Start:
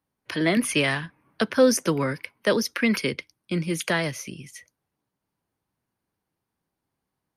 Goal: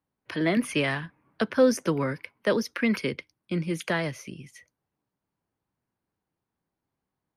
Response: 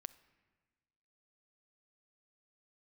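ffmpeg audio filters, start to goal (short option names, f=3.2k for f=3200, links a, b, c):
-af "highshelf=f=3.7k:g=-9,volume=-2dB"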